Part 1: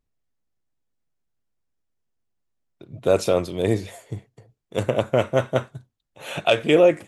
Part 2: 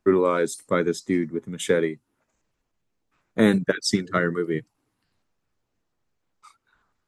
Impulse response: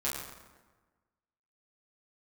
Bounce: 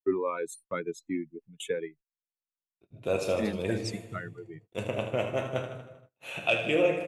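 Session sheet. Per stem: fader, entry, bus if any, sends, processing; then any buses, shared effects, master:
-13.5 dB, 0.00 s, send -7 dB, echo send -6.5 dB, dry
-6.0 dB, 0.00 s, no send, no echo send, per-bin expansion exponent 2; auto duck -6 dB, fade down 1.45 s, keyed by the first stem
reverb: on, RT60 1.3 s, pre-delay 7 ms
echo: feedback echo 78 ms, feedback 55%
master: gate -52 dBFS, range -29 dB; bell 2600 Hz +10 dB 0.24 oct

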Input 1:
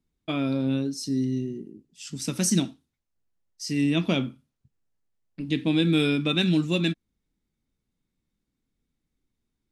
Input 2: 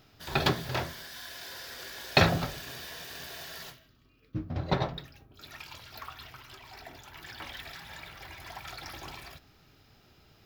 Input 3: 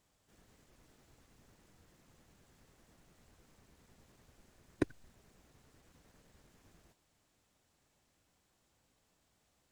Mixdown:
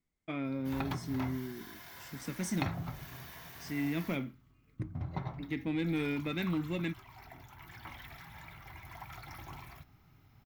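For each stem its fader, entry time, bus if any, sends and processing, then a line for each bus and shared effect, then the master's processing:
-9.5 dB, 0.00 s, no send, resonant high shelf 2500 Hz -6 dB, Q 1.5; soft clip -15.5 dBFS, distortion -21 dB
-2.0 dB, 0.45 s, no send, graphic EQ 125/500/1000/2000/4000/8000 Hz +5/-10/+4/-9/-8/-7 dB; compressor 4:1, threshold -33 dBFS, peak gain reduction 13 dB; notch 4900 Hz, Q 13
-18.5 dB, 0.00 s, no send, dry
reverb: off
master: bell 2100 Hz +13 dB 0.21 oct

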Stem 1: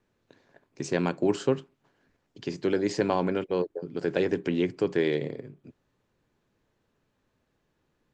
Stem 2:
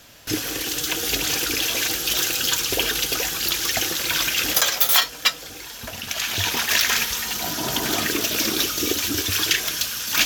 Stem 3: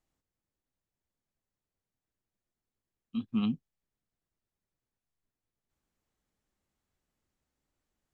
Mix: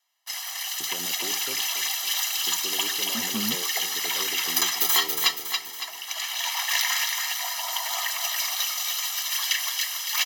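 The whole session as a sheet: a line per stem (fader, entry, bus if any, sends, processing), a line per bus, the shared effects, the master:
-12.5 dB, 0.00 s, no send, echo send -12 dB, HPF 160 Hz 12 dB/oct; limiter -18.5 dBFS, peak gain reduction 6.5 dB
-7.5 dB, 0.00 s, no send, echo send -5 dB, steep high-pass 640 Hz 72 dB/oct; comb 1 ms, depth 91%
-1.5 dB, 0.00 s, no send, no echo send, dry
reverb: off
echo: feedback echo 0.28 s, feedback 47%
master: gate with hold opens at -42 dBFS; low shelf 68 Hz -9 dB

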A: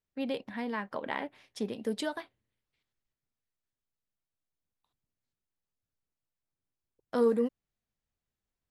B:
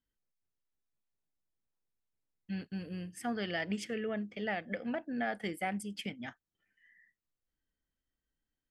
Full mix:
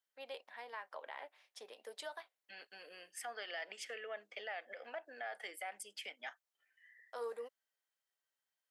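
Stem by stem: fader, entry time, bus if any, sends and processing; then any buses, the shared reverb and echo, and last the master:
-8.0 dB, 0.00 s, no send, dry
+1.0 dB, 0.00 s, no send, compressor, threshold -36 dBFS, peak gain reduction 6.5 dB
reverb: off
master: HPF 560 Hz 24 dB/oct; limiter -34 dBFS, peak gain reduction 8 dB

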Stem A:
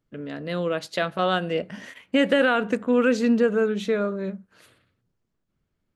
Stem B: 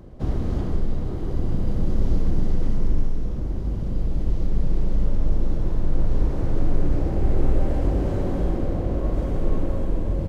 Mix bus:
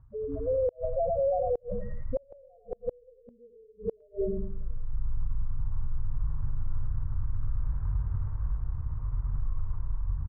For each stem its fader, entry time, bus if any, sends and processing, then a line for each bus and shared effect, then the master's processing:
+2.5 dB, 0.00 s, no send, echo send -5.5 dB, band shelf 530 Hz +8.5 dB 1.1 oct; loudest bins only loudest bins 1
-7.0 dB, 0.00 s, no send, echo send -6 dB, FFT band-reject 150–960 Hz; running maximum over 33 samples; auto duck -18 dB, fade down 0.30 s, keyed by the first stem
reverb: off
echo: feedback echo 0.101 s, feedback 31%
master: LPF 1400 Hz 24 dB/oct; flipped gate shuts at -13 dBFS, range -39 dB; limiter -21 dBFS, peak gain reduction 8 dB

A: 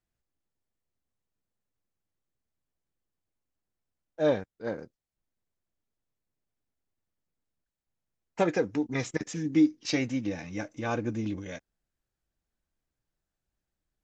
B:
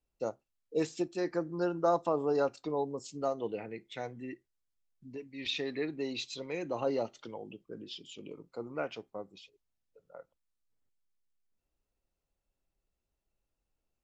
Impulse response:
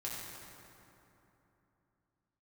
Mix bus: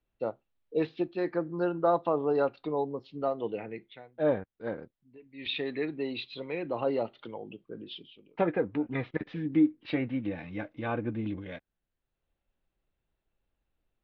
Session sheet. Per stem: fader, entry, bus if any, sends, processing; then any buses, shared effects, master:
-1.5 dB, 0.00 s, no send, treble ducked by the level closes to 2000 Hz, closed at -24.5 dBFS
+2.5 dB, 0.00 s, no send, auto duck -24 dB, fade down 0.35 s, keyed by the first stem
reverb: off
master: steep low-pass 3900 Hz 48 dB/oct

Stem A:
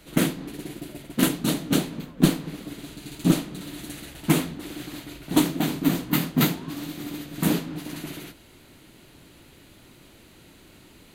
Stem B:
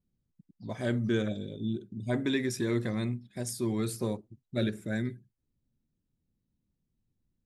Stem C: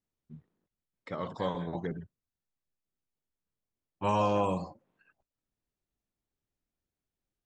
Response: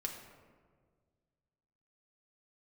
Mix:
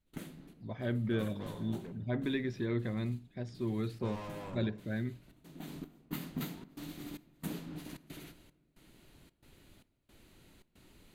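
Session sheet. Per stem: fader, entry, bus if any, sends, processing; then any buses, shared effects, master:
-13.0 dB, 0.00 s, send -10.5 dB, compressor 6:1, threshold -25 dBFS, peak gain reduction 13.5 dB; step gate ".xxx..xxxx" 113 bpm -24 dB; auto duck -21 dB, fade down 0.60 s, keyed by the second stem
-5.5 dB, 0.00 s, no send, LPF 4000 Hz 24 dB/oct
-14.0 dB, 0.00 s, send -7.5 dB, low-pass opened by the level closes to 2200 Hz; hard clip -31.5 dBFS, distortion -6 dB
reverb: on, RT60 1.7 s, pre-delay 5 ms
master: low shelf 75 Hz +10 dB

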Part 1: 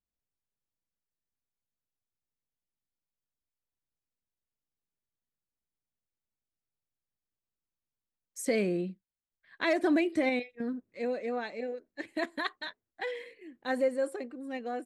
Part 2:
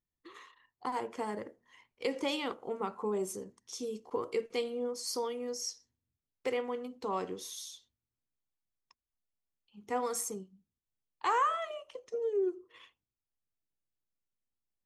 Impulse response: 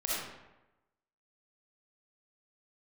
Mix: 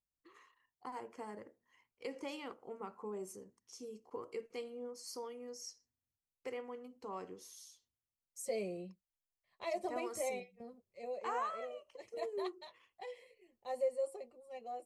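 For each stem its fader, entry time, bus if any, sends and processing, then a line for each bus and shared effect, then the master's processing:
-5.0 dB, 0.00 s, no send, fixed phaser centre 660 Hz, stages 4; notch comb 160 Hz
-10.0 dB, 0.00 s, no send, dry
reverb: off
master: bell 3600 Hz -13 dB 0.21 oct

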